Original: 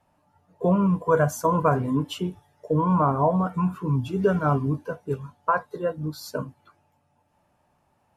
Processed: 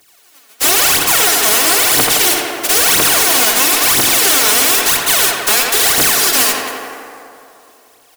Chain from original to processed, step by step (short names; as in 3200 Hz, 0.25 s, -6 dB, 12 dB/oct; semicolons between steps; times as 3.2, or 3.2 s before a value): spectral contrast lowered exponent 0.11; HPF 310 Hz 6 dB/oct; bell 1000 Hz -3 dB 0.77 oct; comb 2.7 ms, depth 33%; reverse; compressor 12:1, threshold -28 dBFS, peak gain reduction 13.5 dB; reverse; phaser 1 Hz, delay 4.9 ms, feedback 75%; in parallel at -11 dB: fuzz box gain 44 dB, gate -46 dBFS; on the sum: tape echo 86 ms, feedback 85%, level -6.5 dB, low-pass 3300 Hz; plate-style reverb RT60 2.9 s, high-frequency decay 0.65×, DRR 16 dB; maximiser +17 dB; gain -3 dB